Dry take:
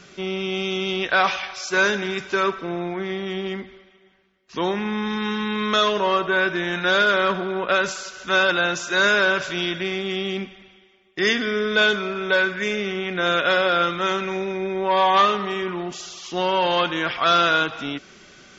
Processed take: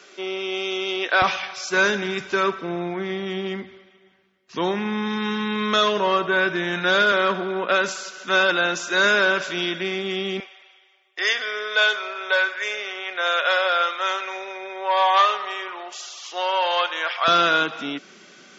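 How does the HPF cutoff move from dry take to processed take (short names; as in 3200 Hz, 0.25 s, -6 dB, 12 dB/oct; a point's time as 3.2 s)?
HPF 24 dB/oct
310 Hz
from 1.22 s 78 Hz
from 7.12 s 180 Hz
from 10.4 s 540 Hz
from 17.28 s 170 Hz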